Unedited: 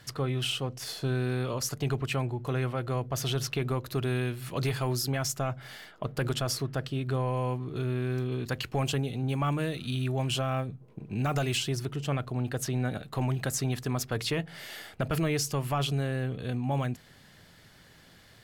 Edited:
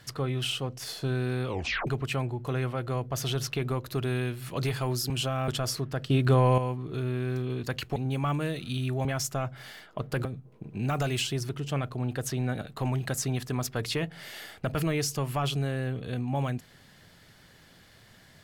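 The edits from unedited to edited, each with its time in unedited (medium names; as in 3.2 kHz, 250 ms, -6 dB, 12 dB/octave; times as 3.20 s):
1.48 s: tape stop 0.39 s
5.10–6.30 s: swap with 10.23–10.61 s
6.92–7.40 s: gain +8 dB
8.78–9.14 s: delete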